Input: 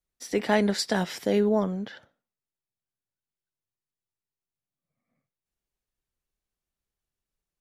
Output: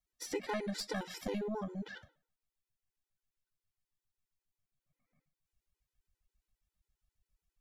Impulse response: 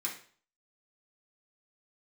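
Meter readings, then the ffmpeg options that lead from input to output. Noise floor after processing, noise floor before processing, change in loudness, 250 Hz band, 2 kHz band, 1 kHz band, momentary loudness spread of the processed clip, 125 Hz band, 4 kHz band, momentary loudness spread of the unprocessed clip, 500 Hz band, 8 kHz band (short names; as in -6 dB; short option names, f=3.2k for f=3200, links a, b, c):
under -85 dBFS, under -85 dBFS, -13.5 dB, -14.0 dB, -12.0 dB, -12.0 dB, 7 LU, -13.0 dB, -11.0 dB, 9 LU, -14.0 dB, -9.5 dB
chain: -filter_complex "[0:a]bandreject=f=153.6:t=h:w=4,bandreject=f=307.2:t=h:w=4,bandreject=f=460.8:t=h:w=4,bandreject=f=614.4:t=h:w=4,bandreject=f=768:t=h:w=4,bandreject=f=921.6:t=h:w=4,asubboost=boost=4.5:cutoff=130,acompressor=threshold=-38dB:ratio=3,aeval=exprs='0.0596*(cos(1*acos(clip(val(0)/0.0596,-1,1)))-cos(1*PI/2))+0.0211*(cos(2*acos(clip(val(0)/0.0596,-1,1)))-cos(2*PI/2))':c=same,asplit=2[a][b];[1:a]atrim=start_sample=2205,lowpass=6.7k[c];[b][c]afir=irnorm=-1:irlink=0,volume=-14dB[d];[a][d]amix=inputs=2:normalize=0,afftfilt=real='re*gt(sin(2*PI*7.4*pts/sr)*(1-2*mod(floor(b*sr/1024/260),2)),0)':imag='im*gt(sin(2*PI*7.4*pts/sr)*(1-2*mod(floor(b*sr/1024/260),2)),0)':win_size=1024:overlap=0.75,volume=1dB"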